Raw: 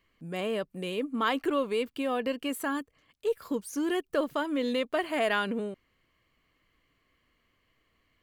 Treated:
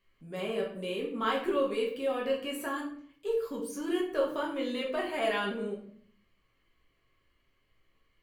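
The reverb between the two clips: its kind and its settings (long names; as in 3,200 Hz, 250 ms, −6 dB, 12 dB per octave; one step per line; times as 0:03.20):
rectangular room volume 75 cubic metres, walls mixed, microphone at 1.1 metres
level −7.5 dB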